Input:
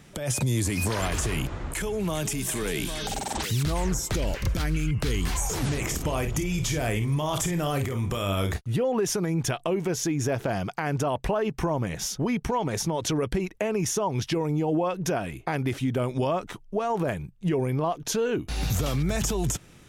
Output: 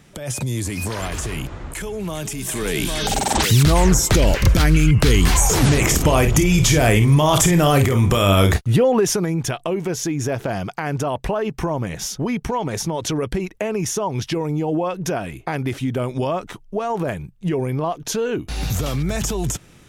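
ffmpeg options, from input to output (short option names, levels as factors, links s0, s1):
-af "volume=3.98,afade=t=in:st=2.37:d=1.04:silence=0.281838,afade=t=out:st=8.51:d=0.89:silence=0.375837"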